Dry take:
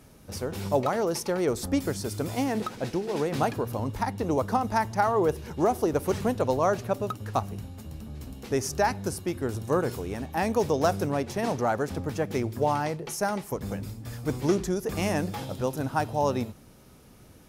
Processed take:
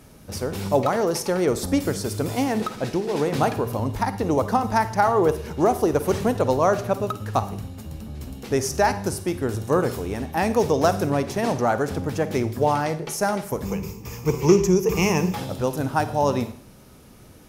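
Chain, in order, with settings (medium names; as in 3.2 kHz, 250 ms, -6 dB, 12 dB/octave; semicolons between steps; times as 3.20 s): 13.65–15.34 s: rippled EQ curve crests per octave 0.77, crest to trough 13 dB; Schroeder reverb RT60 0.57 s, DRR 12 dB; trim +4.5 dB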